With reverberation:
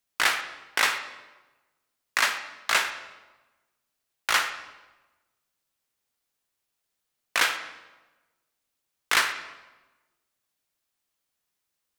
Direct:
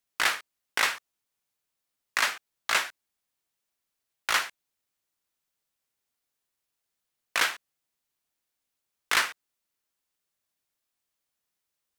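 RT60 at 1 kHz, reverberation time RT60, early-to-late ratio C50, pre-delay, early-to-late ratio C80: 1.1 s, 1.2 s, 9.0 dB, 38 ms, 11.0 dB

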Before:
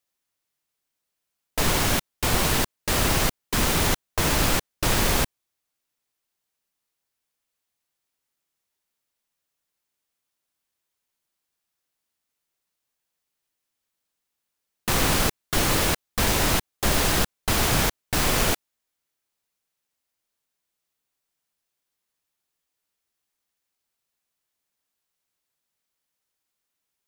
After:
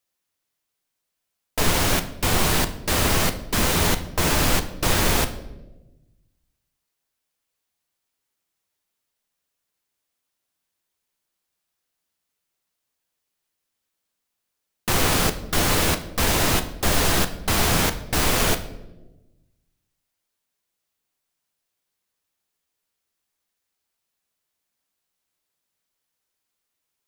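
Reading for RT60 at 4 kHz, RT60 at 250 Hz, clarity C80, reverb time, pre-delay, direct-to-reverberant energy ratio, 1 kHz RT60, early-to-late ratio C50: 0.70 s, 1.5 s, 15.5 dB, 1.1 s, 10 ms, 8.0 dB, 0.80 s, 13.0 dB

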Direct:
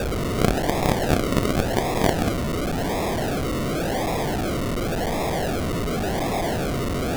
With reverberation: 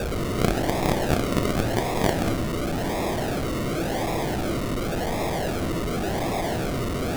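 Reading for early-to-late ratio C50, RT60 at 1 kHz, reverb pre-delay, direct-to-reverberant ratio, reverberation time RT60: 10.5 dB, 1.1 s, 3 ms, 7.5 dB, 1.1 s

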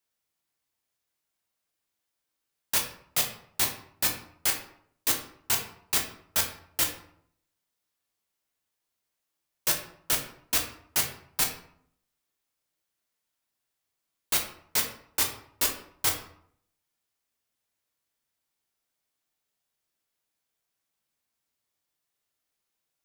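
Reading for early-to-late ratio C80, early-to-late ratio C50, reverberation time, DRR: 11.0 dB, 8.0 dB, 0.65 s, 1.5 dB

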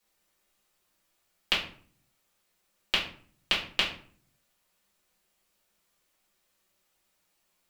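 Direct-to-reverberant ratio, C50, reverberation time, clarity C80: −6.5 dB, 7.5 dB, 0.50 s, 12.0 dB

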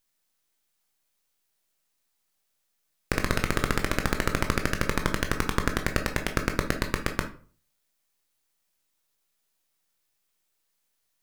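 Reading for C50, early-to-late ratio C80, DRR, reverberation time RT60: 10.5 dB, 17.0 dB, 5.0 dB, 0.45 s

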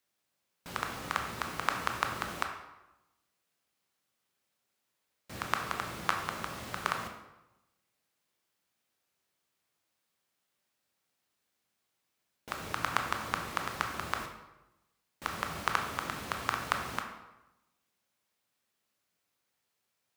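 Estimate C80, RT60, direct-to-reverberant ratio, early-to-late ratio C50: 8.5 dB, 0.95 s, 3.0 dB, 6.5 dB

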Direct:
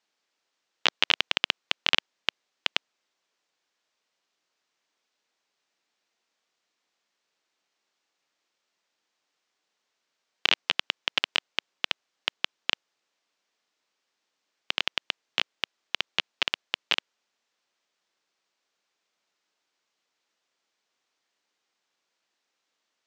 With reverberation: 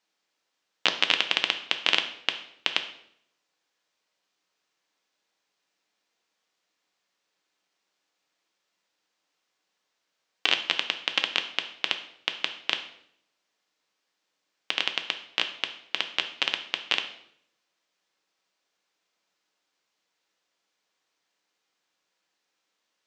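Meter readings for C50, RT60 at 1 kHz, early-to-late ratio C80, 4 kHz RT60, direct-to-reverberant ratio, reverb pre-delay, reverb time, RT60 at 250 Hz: 11.0 dB, 0.60 s, 14.0 dB, 0.60 s, 6.0 dB, 3 ms, 0.70 s, 0.80 s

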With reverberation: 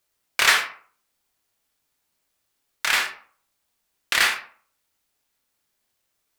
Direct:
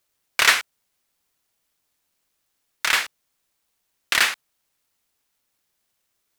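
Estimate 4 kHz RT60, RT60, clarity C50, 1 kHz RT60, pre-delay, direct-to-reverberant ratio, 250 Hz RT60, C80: 0.30 s, 0.50 s, 8.5 dB, 0.50 s, 17 ms, 2.5 dB, 0.45 s, 12.5 dB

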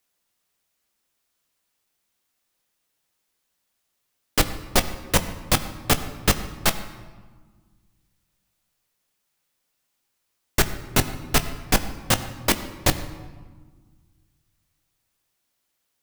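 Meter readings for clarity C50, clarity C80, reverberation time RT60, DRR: 12.0 dB, 13.0 dB, 1.5 s, 9.0 dB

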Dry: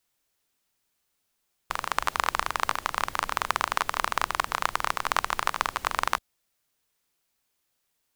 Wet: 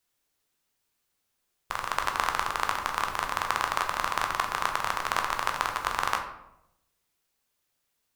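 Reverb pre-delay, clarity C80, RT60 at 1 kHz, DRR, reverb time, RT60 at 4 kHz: 10 ms, 10.0 dB, 0.80 s, 3.0 dB, 0.85 s, 0.50 s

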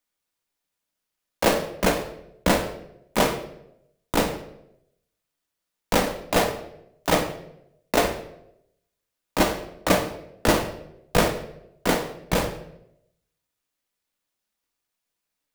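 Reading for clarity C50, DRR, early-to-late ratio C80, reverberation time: 10.0 dB, 5.0 dB, 13.0 dB, 0.80 s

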